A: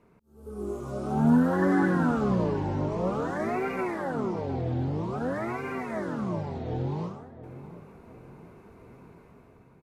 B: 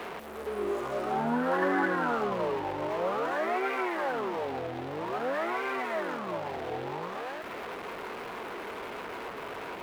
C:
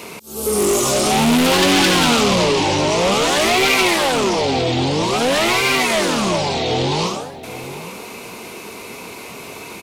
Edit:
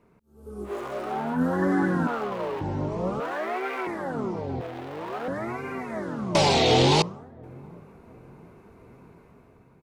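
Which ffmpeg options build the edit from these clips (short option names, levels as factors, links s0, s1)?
-filter_complex "[1:a]asplit=4[s0][s1][s2][s3];[0:a]asplit=6[s4][s5][s6][s7][s8][s9];[s4]atrim=end=0.73[s10];[s0]atrim=start=0.63:end=1.42[s11];[s5]atrim=start=1.32:end=2.072[s12];[s1]atrim=start=2.068:end=2.612[s13];[s6]atrim=start=2.608:end=3.202[s14];[s2]atrim=start=3.198:end=3.872[s15];[s7]atrim=start=3.868:end=4.612[s16];[s3]atrim=start=4.608:end=5.282[s17];[s8]atrim=start=5.278:end=6.352[s18];[2:a]atrim=start=6.348:end=7.022[s19];[s9]atrim=start=7.018[s20];[s10][s11]acrossfade=d=0.1:c1=tri:c2=tri[s21];[s21][s12]acrossfade=d=0.1:c1=tri:c2=tri[s22];[s22][s13]acrossfade=d=0.004:c1=hsin:c2=hsin[s23];[s23][s14]acrossfade=d=0.004:c1=hsin:c2=hsin[s24];[s24][s15]acrossfade=d=0.004:c1=hsin:c2=hsin[s25];[s25][s16]acrossfade=d=0.004:c1=hsin:c2=hsin[s26];[s26][s17]acrossfade=d=0.004:c1=hsin:c2=hsin[s27];[s27][s18]acrossfade=d=0.004:c1=hsin:c2=hsin[s28];[s28][s19]acrossfade=d=0.004:c1=hsin:c2=hsin[s29];[s29][s20]acrossfade=d=0.004:c1=hsin:c2=hsin"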